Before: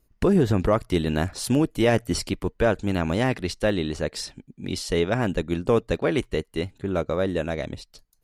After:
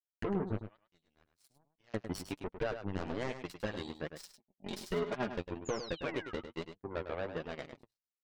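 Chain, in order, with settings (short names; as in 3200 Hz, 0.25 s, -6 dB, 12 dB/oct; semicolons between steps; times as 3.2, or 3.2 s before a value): spectral gate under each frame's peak -25 dB strong; notches 60/120/180 Hz; 0.58–1.94 passive tone stack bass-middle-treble 5-5-5; 4.22–5.28 comb 4.9 ms, depth 99%; compressor 6:1, threshold -21 dBFS, peak gain reduction 7.5 dB; power-law curve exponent 3; soft clip -30.5 dBFS, distortion -7 dB; 5.65–6.33 painted sound fall 1200–7200 Hz -55 dBFS; flange 1.2 Hz, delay 4.2 ms, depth 7.3 ms, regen +25%; on a send: echo 0.103 s -9.5 dB; on the sum: gain +8.5 dB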